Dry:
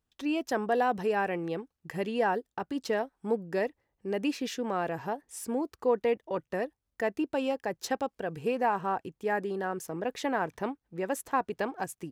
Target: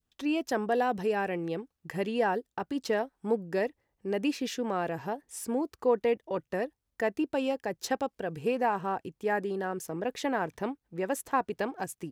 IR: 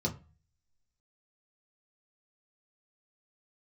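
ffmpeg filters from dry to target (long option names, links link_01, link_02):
-af "adynamicequalizer=threshold=0.00794:dfrequency=1100:dqfactor=0.83:tfrequency=1100:tqfactor=0.83:attack=5:release=100:ratio=0.375:range=2.5:mode=cutabove:tftype=bell,volume=1dB"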